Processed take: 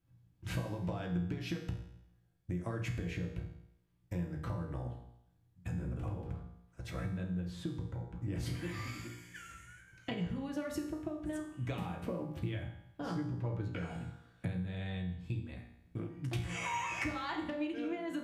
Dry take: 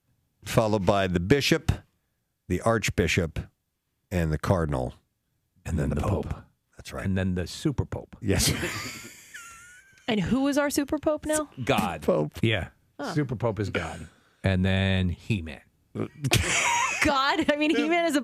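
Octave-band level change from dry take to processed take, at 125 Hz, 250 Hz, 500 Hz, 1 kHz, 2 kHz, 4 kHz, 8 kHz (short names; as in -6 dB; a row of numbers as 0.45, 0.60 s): -9.5, -11.5, -17.0, -14.5, -15.5, -18.5, -21.0 dB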